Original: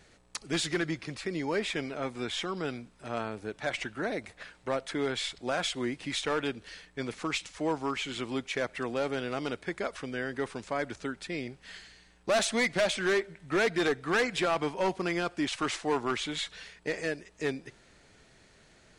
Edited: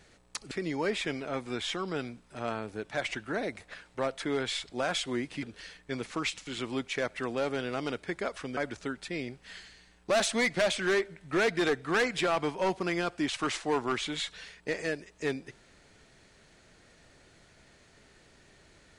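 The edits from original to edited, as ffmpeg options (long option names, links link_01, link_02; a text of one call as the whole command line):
ffmpeg -i in.wav -filter_complex "[0:a]asplit=5[link_01][link_02][link_03][link_04][link_05];[link_01]atrim=end=0.512[link_06];[link_02]atrim=start=1.198:end=6.122[link_07];[link_03]atrim=start=6.508:end=7.552[link_08];[link_04]atrim=start=8.058:end=10.162[link_09];[link_05]atrim=start=10.758[link_10];[link_06][link_07]acrossfade=duration=0.004:curve1=hsin:curve2=hsin[link_11];[link_11][link_08]acrossfade=duration=0.004:curve1=hsin:curve2=hsin[link_12];[link_12][link_09]acrossfade=duration=0.004:curve1=hsin:curve2=hsin[link_13];[link_13][link_10]acrossfade=duration=0.004:curve1=hsin:curve2=hsin" out.wav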